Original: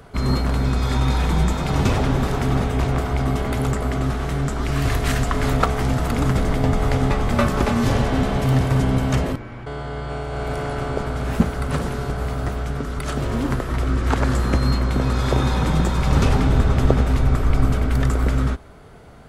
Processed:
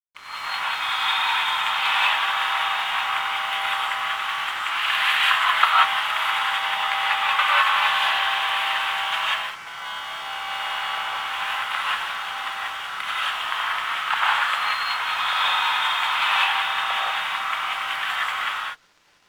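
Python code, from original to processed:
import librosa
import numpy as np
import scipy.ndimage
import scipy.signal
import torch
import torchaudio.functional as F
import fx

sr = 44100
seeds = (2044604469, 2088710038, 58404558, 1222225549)

y = fx.fade_in_head(x, sr, length_s=0.53)
y = scipy.signal.sosfilt(scipy.signal.butter(6, 880.0, 'highpass', fs=sr, output='sos'), y)
y = fx.high_shelf_res(y, sr, hz=4200.0, db=-10.5, q=3.0)
y = np.sign(y) * np.maximum(np.abs(y) - 10.0 ** (-48.0 / 20.0), 0.0)
y = fx.rev_gated(y, sr, seeds[0], gate_ms=210, shape='rising', drr_db=-5.5)
y = F.gain(torch.from_numpy(y), 1.5).numpy()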